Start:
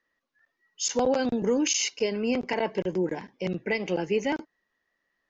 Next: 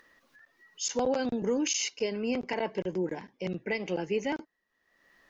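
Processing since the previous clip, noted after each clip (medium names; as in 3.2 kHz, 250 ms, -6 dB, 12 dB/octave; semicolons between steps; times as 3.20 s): upward compressor, threshold -42 dBFS; trim -4 dB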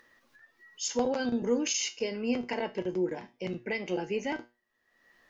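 feedback comb 120 Hz, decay 0.27 s, harmonics all, mix 70%; trim +6 dB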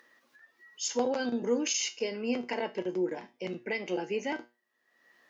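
high-pass 210 Hz 12 dB/octave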